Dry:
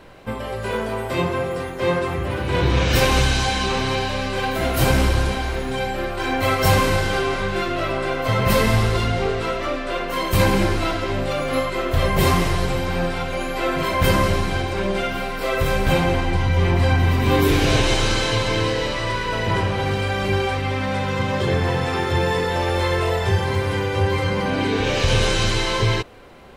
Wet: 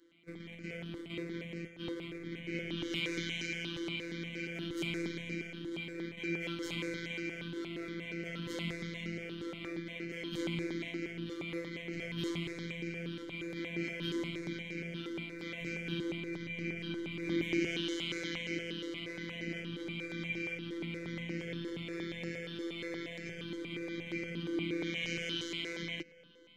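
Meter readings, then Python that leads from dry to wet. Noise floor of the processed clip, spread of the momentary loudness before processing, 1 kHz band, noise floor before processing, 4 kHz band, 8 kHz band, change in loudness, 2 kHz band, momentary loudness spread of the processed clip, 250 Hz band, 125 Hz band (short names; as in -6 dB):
-48 dBFS, 7 LU, -33.5 dB, -28 dBFS, -16.0 dB, -21.5 dB, -18.0 dB, -16.0 dB, 6 LU, -13.5 dB, -23.0 dB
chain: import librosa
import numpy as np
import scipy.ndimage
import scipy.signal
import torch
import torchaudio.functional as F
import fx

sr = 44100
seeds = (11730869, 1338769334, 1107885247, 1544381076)

p1 = fx.highpass(x, sr, hz=110.0, slope=6)
p2 = fx.peak_eq(p1, sr, hz=6700.0, db=12.0, octaves=0.59)
p3 = fx.schmitt(p2, sr, flips_db=-23.0)
p4 = p2 + (p3 * librosa.db_to_amplitude(-4.5))
p5 = fx.vowel_filter(p4, sr, vowel='i')
p6 = fx.robotise(p5, sr, hz=169.0)
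p7 = fx.echo_filtered(p6, sr, ms=1079, feedback_pct=69, hz=2000.0, wet_db=-21)
y = fx.phaser_held(p7, sr, hz=8.5, low_hz=670.0, high_hz=3400.0)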